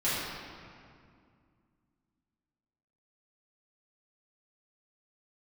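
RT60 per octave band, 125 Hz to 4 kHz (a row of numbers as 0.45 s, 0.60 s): 3.0 s, 3.1 s, 2.3 s, 2.2 s, 1.9 s, 1.5 s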